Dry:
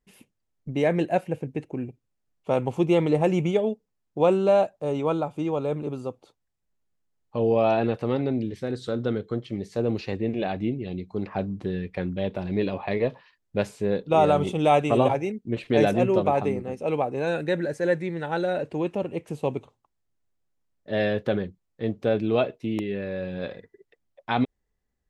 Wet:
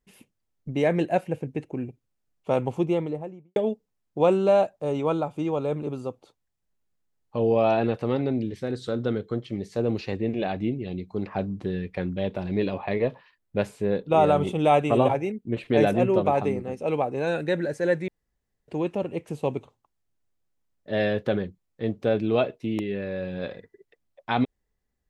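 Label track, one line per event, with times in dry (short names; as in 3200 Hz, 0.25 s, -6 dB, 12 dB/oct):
2.510000	3.560000	studio fade out
12.790000	16.250000	bell 5600 Hz -5 dB 1.1 oct
18.080000	18.680000	room tone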